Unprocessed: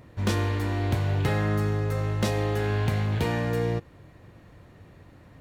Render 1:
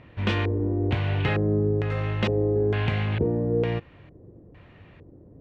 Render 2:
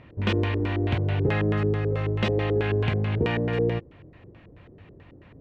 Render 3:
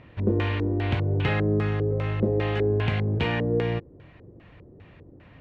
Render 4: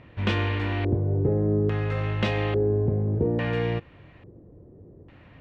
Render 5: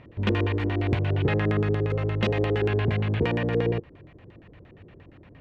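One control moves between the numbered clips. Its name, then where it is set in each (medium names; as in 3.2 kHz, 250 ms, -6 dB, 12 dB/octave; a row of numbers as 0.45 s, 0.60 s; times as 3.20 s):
LFO low-pass, rate: 1.1 Hz, 4.6 Hz, 2.5 Hz, 0.59 Hz, 8.6 Hz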